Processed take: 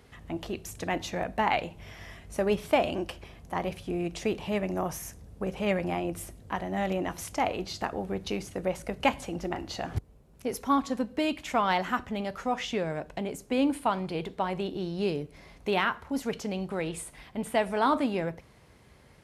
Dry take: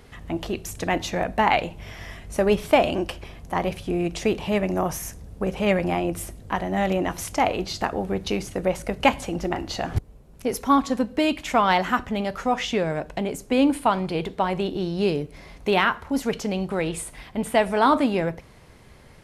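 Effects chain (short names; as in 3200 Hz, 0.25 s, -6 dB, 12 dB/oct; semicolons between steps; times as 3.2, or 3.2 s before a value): HPF 45 Hz; gain -6.5 dB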